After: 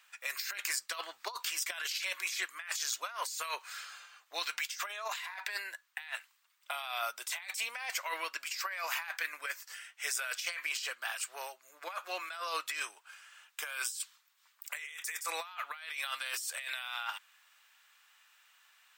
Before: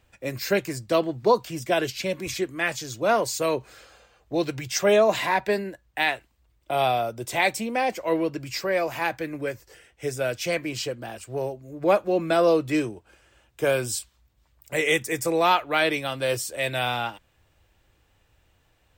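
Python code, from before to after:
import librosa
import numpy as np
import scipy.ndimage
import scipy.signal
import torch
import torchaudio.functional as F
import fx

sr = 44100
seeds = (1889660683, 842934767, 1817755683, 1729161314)

y = scipy.signal.sosfilt(scipy.signal.cheby1(3, 1.0, 1200.0, 'highpass', fs=sr, output='sos'), x)
y = fx.over_compress(y, sr, threshold_db=-39.0, ratio=-1.0)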